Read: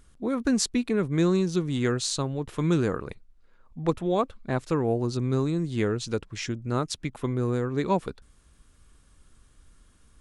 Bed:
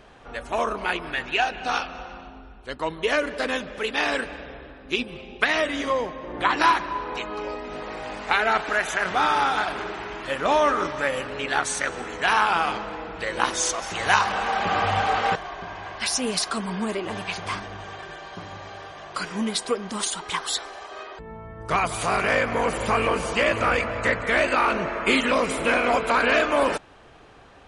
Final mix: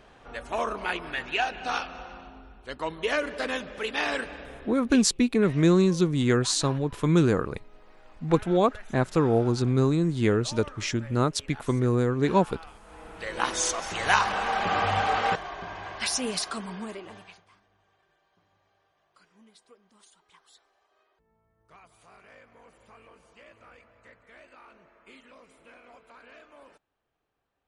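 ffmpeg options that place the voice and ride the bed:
ffmpeg -i stem1.wav -i stem2.wav -filter_complex "[0:a]adelay=4450,volume=3dB[link_01];[1:a]volume=17dB,afade=type=out:start_time=4.73:duration=0.37:silence=0.105925,afade=type=in:start_time=12.81:duration=0.77:silence=0.0891251,afade=type=out:start_time=16.03:duration=1.42:silence=0.0354813[link_02];[link_01][link_02]amix=inputs=2:normalize=0" out.wav

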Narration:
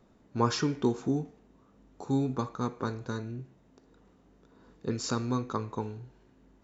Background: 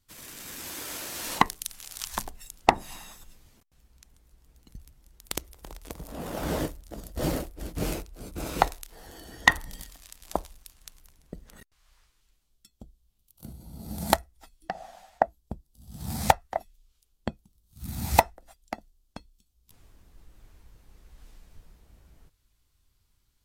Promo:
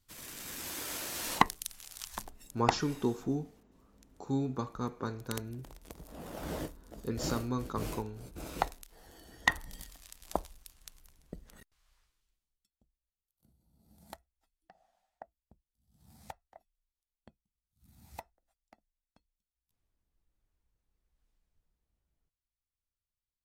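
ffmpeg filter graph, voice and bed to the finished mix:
ffmpeg -i stem1.wav -i stem2.wav -filter_complex "[0:a]adelay=2200,volume=-4dB[link_01];[1:a]volume=3dB,afade=type=out:start_time=1.17:duration=0.98:silence=0.446684,afade=type=in:start_time=9.42:duration=0.5:silence=0.562341,afade=type=out:start_time=11.35:duration=1.36:silence=0.0749894[link_02];[link_01][link_02]amix=inputs=2:normalize=0" out.wav

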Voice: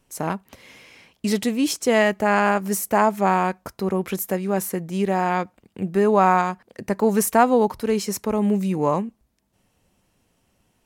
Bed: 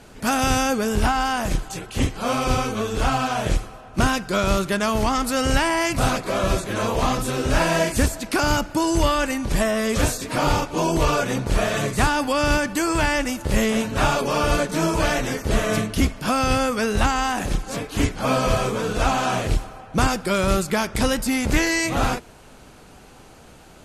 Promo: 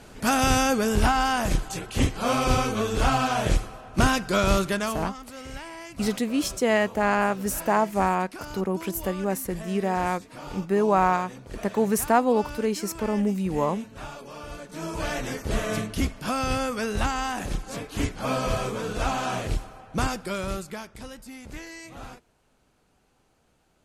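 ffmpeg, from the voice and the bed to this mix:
ffmpeg -i stem1.wav -i stem2.wav -filter_complex "[0:a]adelay=4750,volume=-4dB[link_01];[1:a]volume=12dB,afade=type=out:start_time=4.57:duration=0.57:silence=0.125893,afade=type=in:start_time=14.61:duration=0.68:silence=0.223872,afade=type=out:start_time=19.97:duration=1.01:silence=0.199526[link_02];[link_01][link_02]amix=inputs=2:normalize=0" out.wav

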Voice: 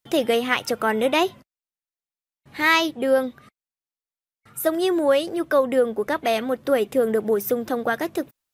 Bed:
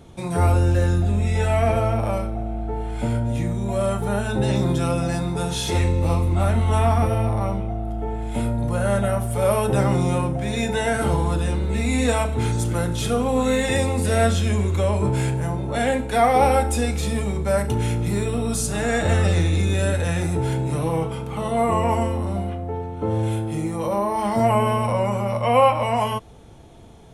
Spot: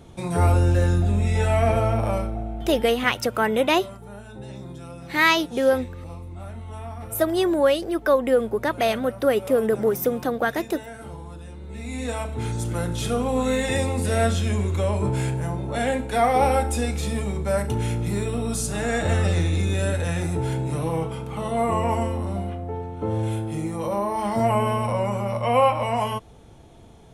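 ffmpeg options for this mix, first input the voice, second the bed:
ffmpeg -i stem1.wav -i stem2.wav -filter_complex "[0:a]adelay=2550,volume=0dB[link_01];[1:a]volume=14dB,afade=type=out:start_time=2.2:duration=0.93:silence=0.149624,afade=type=in:start_time=11.55:duration=1.42:silence=0.188365[link_02];[link_01][link_02]amix=inputs=2:normalize=0" out.wav

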